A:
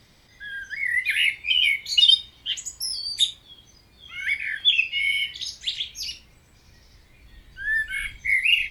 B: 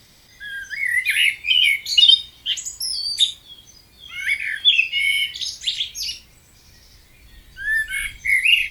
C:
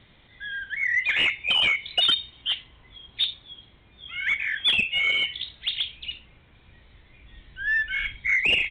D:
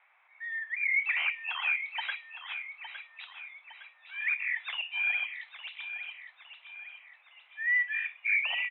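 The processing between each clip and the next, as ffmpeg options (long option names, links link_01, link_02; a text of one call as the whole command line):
ffmpeg -i in.wav -filter_complex "[0:a]acrossover=split=4600[link_01][link_02];[link_02]acompressor=threshold=-36dB:ratio=4:attack=1:release=60[link_03];[link_01][link_03]amix=inputs=2:normalize=0,highshelf=frequency=4900:gain=11,volume=2dB" out.wav
ffmpeg -i in.wav -af "aresample=8000,asoftclip=type=tanh:threshold=-16dB,aresample=44100,aeval=exprs='0.299*(cos(1*acos(clip(val(0)/0.299,-1,1)))-cos(1*PI/2))+0.0168*(cos(3*acos(clip(val(0)/0.299,-1,1)))-cos(3*PI/2))':channel_layout=same" out.wav
ffmpeg -i in.wav -af "aecho=1:1:861|1722|2583|3444|4305:0.299|0.143|0.0688|0.033|0.0158,highpass=frequency=590:width_type=q:width=0.5412,highpass=frequency=590:width_type=q:width=1.307,lowpass=frequency=2200:width_type=q:width=0.5176,lowpass=frequency=2200:width_type=q:width=0.7071,lowpass=frequency=2200:width_type=q:width=1.932,afreqshift=200,volume=-2.5dB" out.wav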